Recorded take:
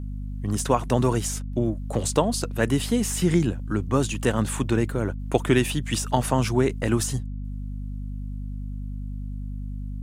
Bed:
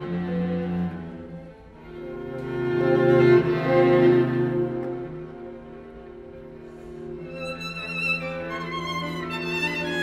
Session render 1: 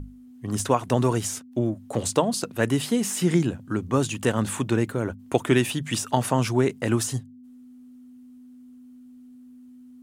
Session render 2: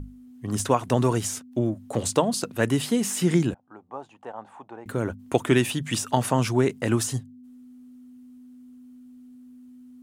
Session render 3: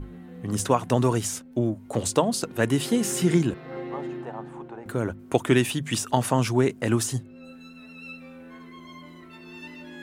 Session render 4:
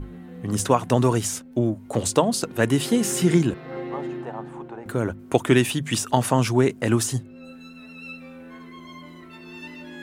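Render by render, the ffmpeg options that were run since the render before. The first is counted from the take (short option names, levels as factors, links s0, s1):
-af "bandreject=f=50:t=h:w=6,bandreject=f=100:t=h:w=6,bandreject=f=150:t=h:w=6,bandreject=f=200:t=h:w=6"
-filter_complex "[0:a]asettb=1/sr,asplit=3[s0][s1][s2];[s0]atrim=end=3.544[s3];[s1]atrim=start=3.54:end=4.86,asetpts=PTS-STARTPTS,afade=t=in:d=0.004:c=qsin,afade=t=out:st=1.316:d=0.004:c=qsin,bandpass=f=800:t=q:w=4.9[s4];[s2]atrim=start=4.856[s5];[s3][s4]acrossfade=d=0.004:c1=hsin:c2=qsin[s6];[s6][s5]acrossfade=d=0.004:c1=qsin:c2=hsin"
-filter_complex "[1:a]volume=0.141[s0];[0:a][s0]amix=inputs=2:normalize=0"
-af "volume=1.33"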